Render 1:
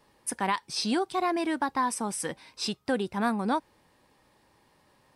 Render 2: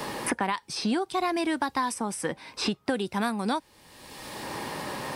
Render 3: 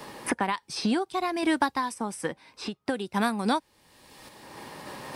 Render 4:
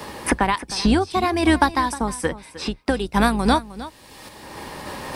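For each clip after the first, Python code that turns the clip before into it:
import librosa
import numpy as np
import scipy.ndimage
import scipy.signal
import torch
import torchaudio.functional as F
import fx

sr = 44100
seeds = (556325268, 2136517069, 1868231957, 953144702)

y1 = fx.band_squash(x, sr, depth_pct=100)
y2 = fx.tremolo_random(y1, sr, seeds[0], hz=3.5, depth_pct=55)
y2 = fx.upward_expand(y2, sr, threshold_db=-44.0, expansion=1.5)
y2 = y2 * librosa.db_to_amplitude(4.5)
y3 = fx.octave_divider(y2, sr, octaves=2, level_db=-5.0)
y3 = y3 + 10.0 ** (-16.0 / 20.0) * np.pad(y3, (int(309 * sr / 1000.0), 0))[:len(y3)]
y3 = y3 * librosa.db_to_amplitude(7.5)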